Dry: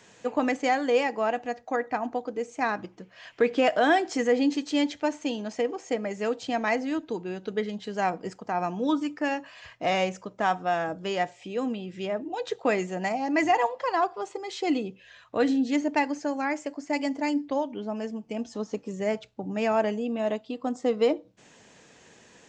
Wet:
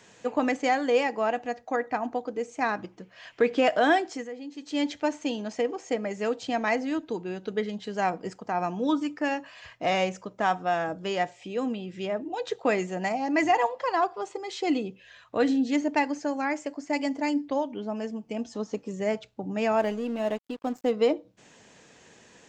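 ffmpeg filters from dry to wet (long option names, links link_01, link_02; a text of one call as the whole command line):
ffmpeg -i in.wav -filter_complex "[0:a]asplit=3[link_01][link_02][link_03];[link_01]afade=type=out:start_time=19.78:duration=0.02[link_04];[link_02]aeval=exprs='sgn(val(0))*max(abs(val(0))-0.00531,0)':channel_layout=same,afade=type=in:start_time=19.78:duration=0.02,afade=type=out:start_time=20.9:duration=0.02[link_05];[link_03]afade=type=in:start_time=20.9:duration=0.02[link_06];[link_04][link_05][link_06]amix=inputs=3:normalize=0,asplit=3[link_07][link_08][link_09];[link_07]atrim=end=4.3,asetpts=PTS-STARTPTS,afade=type=out:start_time=3.92:duration=0.38:silence=0.158489[link_10];[link_08]atrim=start=4.3:end=4.53,asetpts=PTS-STARTPTS,volume=-16dB[link_11];[link_09]atrim=start=4.53,asetpts=PTS-STARTPTS,afade=type=in:duration=0.38:silence=0.158489[link_12];[link_10][link_11][link_12]concat=n=3:v=0:a=1" out.wav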